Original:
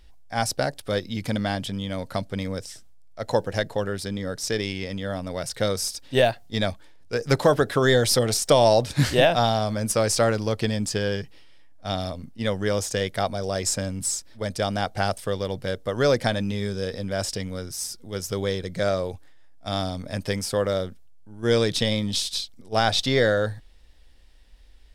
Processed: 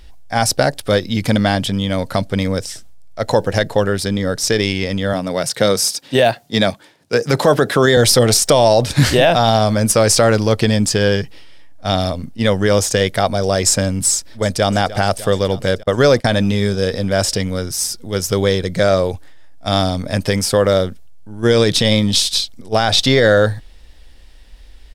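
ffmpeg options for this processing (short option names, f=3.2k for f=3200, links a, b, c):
-filter_complex "[0:a]asettb=1/sr,asplit=3[a][b][c];[a]atrim=end=5.134[d];[b]atrim=start=5.13:end=7.97,asetpts=PTS-STARTPTS,afade=t=in:d=0.004:c=qsin,afade=t=out:st=2.836:d=0.004:c=qsin,highpass=f=120:w=0.5412,highpass=f=120:w=1.3066[e];[c]atrim=start=7.966[f];[d][e]acrossfade=d=0.004:c1=hsin:c2=qsin[g];[g][f]acrossfade=d=0.004:c1=qsin:c2=hsin,asplit=2[h][i];[i]afade=t=in:st=14.12:d=0.01,afade=t=out:st=14.71:d=0.01,aecho=0:1:300|600|900|1200|1500|1800|2100|2400|2700|3000:0.133352|0.100014|0.0750106|0.0562579|0.0421935|0.0316451|0.0237338|0.0178004|0.0133503|0.0100127[j];[h][j]amix=inputs=2:normalize=0,asettb=1/sr,asplit=3[k][l][m];[k]atrim=end=15.834[n];[l]atrim=start=15.83:end=16.79,asetpts=PTS-STARTPTS,afade=t=in:d=0.004:c=qsin,afade=t=out:st=0.956:d=0.004:c=qsin,agate=range=-29dB:threshold=-32dB:ratio=16:release=100:detection=peak[o];[m]atrim=start=16.786[p];[n][o]acrossfade=d=0.004:c1=hsin:c2=qsin[q];[q][p]acrossfade=d=0.004:c1=qsin:c2=hsin,alimiter=level_in=12dB:limit=-1dB:release=50:level=0:latency=1,volume=-1dB"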